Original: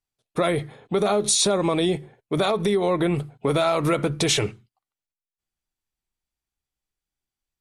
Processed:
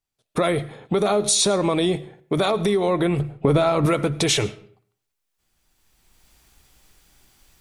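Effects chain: recorder AGC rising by 16 dB/s; 3.19–3.86 s: tilt EQ -2 dB/octave; reverberation RT60 0.55 s, pre-delay 61 ms, DRR 19 dB; trim +1 dB

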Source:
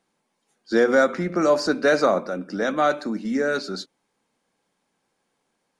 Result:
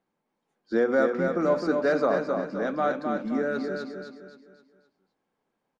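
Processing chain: low-pass 1.4 kHz 6 dB/octave; on a send: feedback delay 261 ms, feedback 40%, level -5 dB; on the sum: trim -4.5 dB

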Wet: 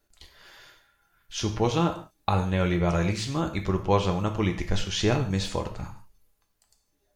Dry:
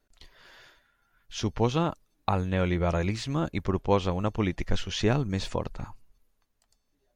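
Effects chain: treble shelf 5.3 kHz +7 dB; gated-style reverb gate 190 ms falling, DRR 4 dB

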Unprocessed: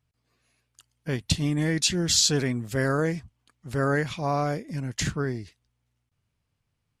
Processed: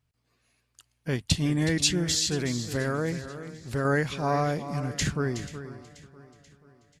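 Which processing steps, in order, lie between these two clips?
1.97–3.85 s: compression, threshold -24 dBFS, peak gain reduction 7 dB; on a send: delay 370 ms -12 dB; on the sum: modulated delay 484 ms, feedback 50%, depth 63 cents, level -18 dB

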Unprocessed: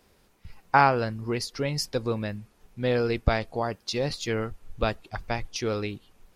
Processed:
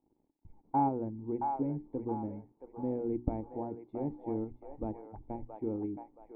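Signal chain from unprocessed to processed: hum notches 60/120/180/240/300/360/420 Hz; in parallel at -2 dB: level held to a coarse grid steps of 10 dB; on the sum: bit crusher 9-bit; cascade formant filter u; on a send: feedback echo behind a band-pass 673 ms, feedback 36%, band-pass 1.2 kHz, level -3.5 dB

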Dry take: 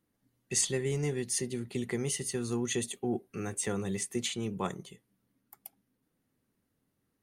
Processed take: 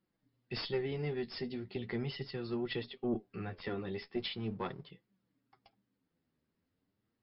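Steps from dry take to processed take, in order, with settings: flange 0.39 Hz, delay 5.1 ms, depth 8.3 ms, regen +28%; 4.11–4.90 s: hysteresis with a dead band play -52.5 dBFS; Chebyshev shaper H 2 -10 dB, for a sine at -19.5 dBFS; brick-wall FIR low-pass 5.4 kHz

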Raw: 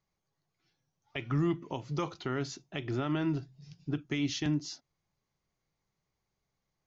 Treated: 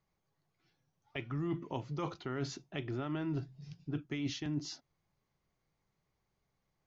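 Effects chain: treble shelf 4.7 kHz -9 dB; reverse; compression 6:1, threshold -36 dBFS, peak gain reduction 10.5 dB; reverse; trim +2.5 dB

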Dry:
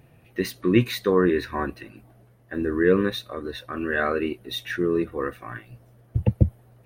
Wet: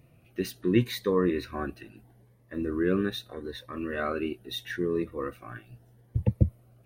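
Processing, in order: Shepard-style phaser rising 0.77 Hz; trim -4 dB

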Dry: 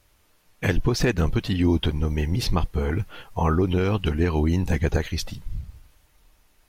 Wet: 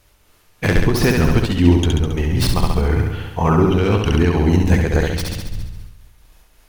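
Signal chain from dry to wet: tracing distortion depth 0.12 ms; flutter echo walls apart 11.7 m, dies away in 1.1 s; random flutter of the level, depth 50%; trim +7 dB

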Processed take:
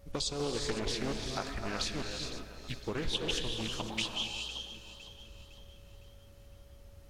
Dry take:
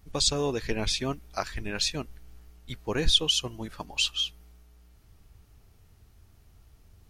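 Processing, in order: compression 3:1, threshold -35 dBFS, peak gain reduction 14 dB; gated-style reverb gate 440 ms rising, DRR 3 dB; whistle 560 Hz -61 dBFS; on a send: echo whose repeats swap between lows and highs 254 ms, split 1.9 kHz, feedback 66%, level -9 dB; on the sum: loudspeaker Doppler distortion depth 0.38 ms

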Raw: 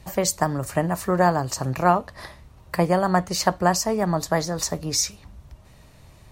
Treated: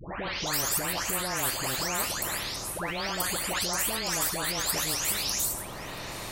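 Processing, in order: delay that grows with frequency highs late, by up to 467 ms; in parallel at -2.5 dB: compressor with a negative ratio -27 dBFS; on the sum: spectrum-flattening compressor 4:1; trim -7 dB

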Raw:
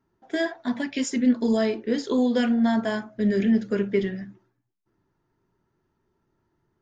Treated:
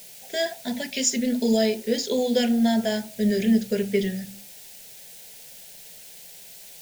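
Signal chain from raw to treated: treble shelf 3.9 kHz +11 dB; hum notches 50/100/150/200/250 Hz; in parallel at -8 dB: word length cut 6-bit, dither triangular; on the sum: static phaser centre 310 Hz, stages 6

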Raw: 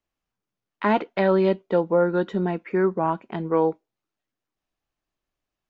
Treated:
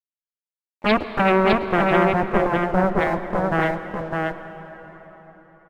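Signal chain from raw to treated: bass shelf 63 Hz -7 dB; in parallel at +0.5 dB: peak limiter -15.5 dBFS, peak gain reduction 7.5 dB; on the sum: rippled Chebyshev low-pass 870 Hz, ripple 9 dB; crossover distortion -48 dBFS; Chebyshev shaper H 4 -9 dB, 6 -8 dB, 7 -8 dB, 8 -8 dB, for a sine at -9.5 dBFS; delay 608 ms -3.5 dB; on a send at -10.5 dB: reverberation RT60 4.5 s, pre-delay 93 ms

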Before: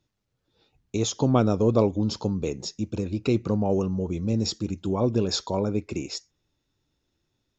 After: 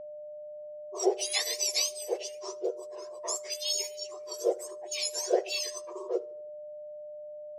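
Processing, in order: spectrum inverted on a logarithmic axis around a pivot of 1.6 kHz; level-controlled noise filter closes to 410 Hz, open at -27 dBFS; peaking EQ 6.3 kHz +4.5 dB 1.3 oct; on a send: tape echo 78 ms, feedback 47%, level -22 dB, low-pass 5.9 kHz; on the sum: whistle 600 Hz -40 dBFS; distance through air 66 m

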